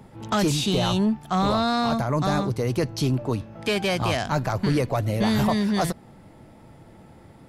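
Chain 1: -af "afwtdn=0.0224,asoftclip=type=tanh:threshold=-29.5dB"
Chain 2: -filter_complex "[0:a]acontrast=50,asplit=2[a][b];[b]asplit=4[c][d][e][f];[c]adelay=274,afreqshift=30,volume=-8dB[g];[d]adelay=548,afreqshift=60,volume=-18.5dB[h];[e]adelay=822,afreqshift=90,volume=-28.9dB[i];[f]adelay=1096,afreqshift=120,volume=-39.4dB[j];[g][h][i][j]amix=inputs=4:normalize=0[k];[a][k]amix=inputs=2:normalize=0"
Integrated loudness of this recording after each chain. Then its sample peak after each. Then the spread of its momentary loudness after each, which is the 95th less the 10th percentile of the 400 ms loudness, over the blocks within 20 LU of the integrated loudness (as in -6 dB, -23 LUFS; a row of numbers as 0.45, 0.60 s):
-32.5, -17.5 LUFS; -29.5, -6.0 dBFS; 4, 6 LU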